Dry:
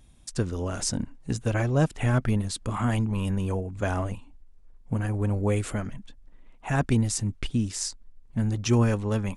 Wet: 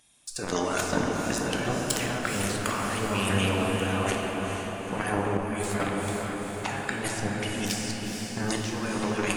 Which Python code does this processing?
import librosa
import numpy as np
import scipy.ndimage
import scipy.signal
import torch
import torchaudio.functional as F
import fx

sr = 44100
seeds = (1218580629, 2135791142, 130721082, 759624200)

p1 = fx.highpass(x, sr, hz=1400.0, slope=6)
p2 = fx.fuzz(p1, sr, gain_db=40.0, gate_db=-43.0)
p3 = p1 + F.gain(torch.from_numpy(p2), -3.5).numpy()
p4 = fx.high_shelf(p3, sr, hz=6100.0, db=3.5)
p5 = fx.over_compress(p4, sr, threshold_db=-29.0, ratio=-1.0)
p6 = fx.spec_gate(p5, sr, threshold_db=-20, keep='strong')
p7 = p6 + fx.echo_diffused(p6, sr, ms=455, feedback_pct=59, wet_db=-5.5, dry=0)
p8 = fx.room_shoebox(p7, sr, seeds[0], volume_m3=150.0, walls='hard', distance_m=0.45)
p9 = fx.ensemble(p8, sr, at=(5.37, 5.8))
y = F.gain(torch.from_numpy(p9), -3.5).numpy()